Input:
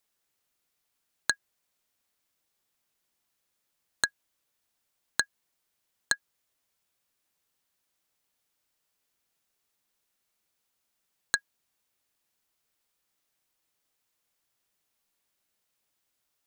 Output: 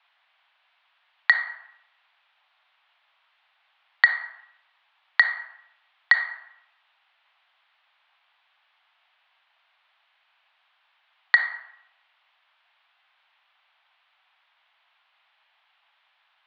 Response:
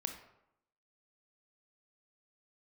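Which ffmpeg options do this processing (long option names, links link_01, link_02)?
-filter_complex "[0:a]asplit=2[link_01][link_02];[1:a]atrim=start_sample=2205,highshelf=frequency=5300:gain=-9[link_03];[link_02][link_03]afir=irnorm=-1:irlink=0,volume=-2.5dB[link_04];[link_01][link_04]amix=inputs=2:normalize=0,highpass=frequency=450:width_type=q:width=0.5412,highpass=frequency=450:width_type=q:width=1.307,lowpass=frequency=3300:width_type=q:width=0.5176,lowpass=frequency=3300:width_type=q:width=0.7071,lowpass=frequency=3300:width_type=q:width=1.932,afreqshift=260,alimiter=level_in=17dB:limit=-1dB:release=50:level=0:latency=1,volume=-1dB"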